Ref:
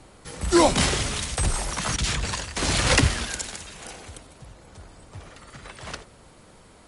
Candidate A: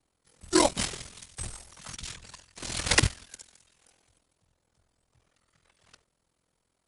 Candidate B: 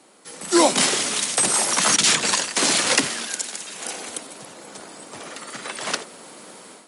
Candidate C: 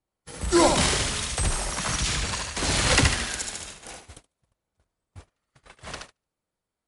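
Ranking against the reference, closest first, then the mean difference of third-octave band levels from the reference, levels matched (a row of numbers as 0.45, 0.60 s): B, C, A; 5.5, 7.5, 13.0 dB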